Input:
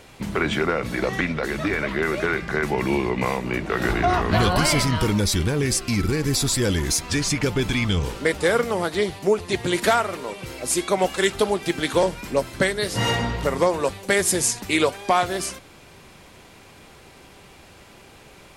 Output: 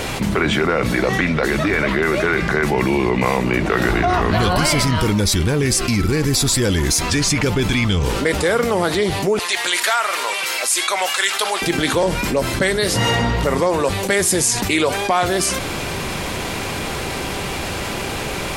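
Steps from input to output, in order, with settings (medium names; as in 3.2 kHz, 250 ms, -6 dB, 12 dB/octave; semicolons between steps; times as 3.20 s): 9.39–11.62 s: high-pass 1.1 kHz 12 dB/octave; level flattener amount 70%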